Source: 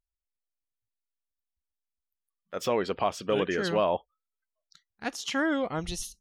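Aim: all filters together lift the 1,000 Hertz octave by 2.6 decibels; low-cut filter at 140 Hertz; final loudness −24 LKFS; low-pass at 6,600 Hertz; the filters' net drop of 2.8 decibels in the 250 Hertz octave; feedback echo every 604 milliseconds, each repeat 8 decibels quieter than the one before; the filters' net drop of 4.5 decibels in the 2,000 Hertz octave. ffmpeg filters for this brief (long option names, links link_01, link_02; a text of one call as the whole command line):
ffmpeg -i in.wav -af "highpass=140,lowpass=6600,equalizer=frequency=250:width_type=o:gain=-3.5,equalizer=frequency=1000:width_type=o:gain=5.5,equalizer=frequency=2000:width_type=o:gain=-8.5,aecho=1:1:604|1208|1812|2416|3020:0.398|0.159|0.0637|0.0255|0.0102,volume=6dB" out.wav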